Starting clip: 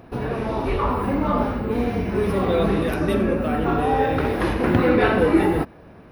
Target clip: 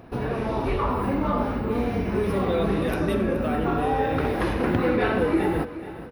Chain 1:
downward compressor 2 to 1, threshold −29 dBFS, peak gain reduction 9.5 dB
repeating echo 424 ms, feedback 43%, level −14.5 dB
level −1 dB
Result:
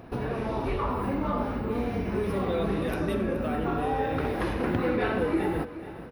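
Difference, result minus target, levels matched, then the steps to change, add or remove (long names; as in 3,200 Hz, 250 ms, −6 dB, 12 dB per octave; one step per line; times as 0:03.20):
downward compressor: peak gain reduction +4 dB
change: downward compressor 2 to 1, threshold −20.5 dBFS, peak gain reduction 5.5 dB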